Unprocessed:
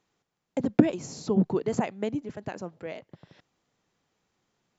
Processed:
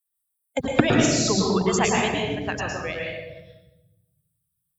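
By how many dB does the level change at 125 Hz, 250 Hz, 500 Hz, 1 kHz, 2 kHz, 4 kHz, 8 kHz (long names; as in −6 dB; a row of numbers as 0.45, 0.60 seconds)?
+6.0 dB, +3.0 dB, +6.0 dB, +11.0 dB, +16.5 dB, +19.5 dB, can't be measured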